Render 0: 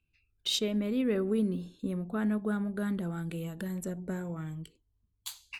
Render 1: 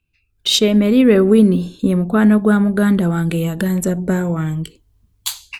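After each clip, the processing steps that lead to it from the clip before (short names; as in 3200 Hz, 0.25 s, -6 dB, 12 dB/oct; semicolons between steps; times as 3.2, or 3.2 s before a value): AGC gain up to 12 dB; gain +6 dB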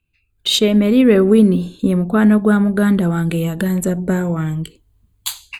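bell 5500 Hz -10 dB 0.24 oct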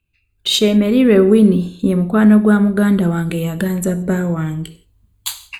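reverb, pre-delay 3 ms, DRR 11 dB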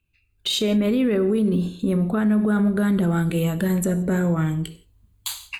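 limiter -12.5 dBFS, peak gain reduction 11 dB; gain -1.5 dB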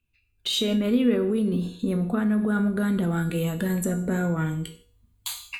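resonator 240 Hz, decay 0.44 s, harmonics all, mix 80%; gain +8.5 dB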